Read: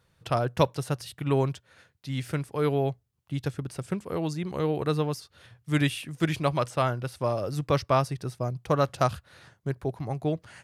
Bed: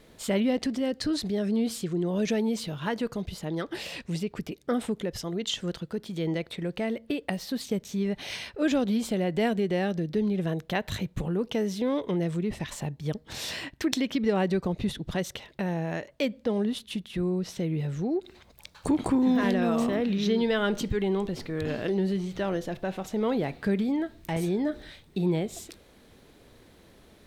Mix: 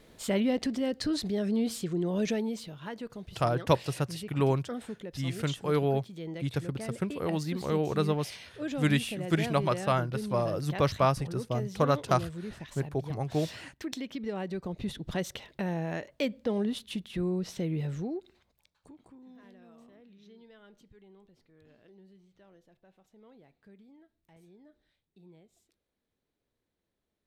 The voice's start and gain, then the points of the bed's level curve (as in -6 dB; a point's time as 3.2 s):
3.10 s, -1.5 dB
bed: 2.25 s -2 dB
2.75 s -10 dB
14.48 s -10 dB
15.14 s -2.5 dB
17.94 s -2.5 dB
18.99 s -30 dB